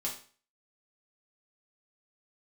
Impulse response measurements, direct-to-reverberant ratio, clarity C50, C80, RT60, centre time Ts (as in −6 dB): −4.5 dB, 8.0 dB, 12.5 dB, 0.40 s, 24 ms